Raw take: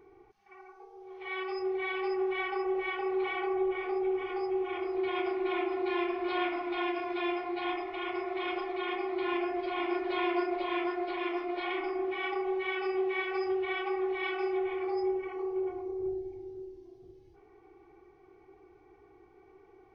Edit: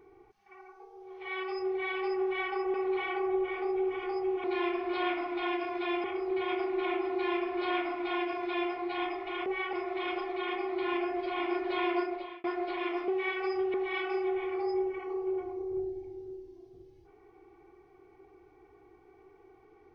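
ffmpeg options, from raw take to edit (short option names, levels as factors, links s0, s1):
-filter_complex "[0:a]asplit=9[s0][s1][s2][s3][s4][s5][s6][s7][s8];[s0]atrim=end=2.742[s9];[s1]atrim=start=3.008:end=4.712[s10];[s2]atrim=start=5.788:end=7.392[s11];[s3]atrim=start=4.708:end=8.132[s12];[s4]atrim=start=2.738:end=3.012[s13];[s5]atrim=start=8.128:end=10.84,asetpts=PTS-STARTPTS,afade=t=out:st=2.252:d=0.46[s14];[s6]atrim=start=10.84:end=11.482,asetpts=PTS-STARTPTS,afade=t=in:d=0.004:c=hsin[s15];[s7]atrim=start=12.988:end=13.652[s16];[s8]atrim=start=14.028[s17];[s9][s10]acrossfade=d=0.004:c1=hsin:c2=hsin[s18];[s18][s11]acrossfade=d=0.004:c1=hsin:c2=hsin[s19];[s19][s12]acrossfade=d=0.004:c1=hsin:c2=hsin[s20];[s20][s13]acrossfade=d=0.004:c1=hsin:c2=hsin[s21];[s14][s15]concat=n=2:v=0:a=1[s22];[s21][s22]acrossfade=d=0.004:c1=hsin:c2=hsin[s23];[s23][s16]acrossfade=d=0.004:c1=hsin:c2=hsin[s24];[s24][s17]acrossfade=d=0.004:c1=hsin:c2=hsin"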